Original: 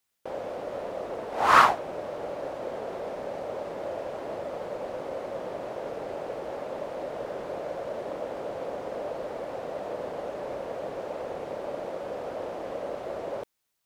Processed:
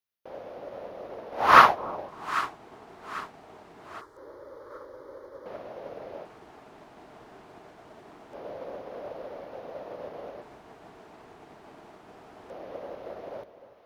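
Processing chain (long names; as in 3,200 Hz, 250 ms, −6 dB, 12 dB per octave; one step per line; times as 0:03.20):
echo with a time of its own for lows and highs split 900 Hz, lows 296 ms, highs 794 ms, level −8.5 dB
auto-filter notch square 0.24 Hz 540–7,900 Hz
0:04.01–0:05.46: phaser with its sweep stopped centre 710 Hz, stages 6
expander for the loud parts 1.5 to 1, over −43 dBFS
level +4 dB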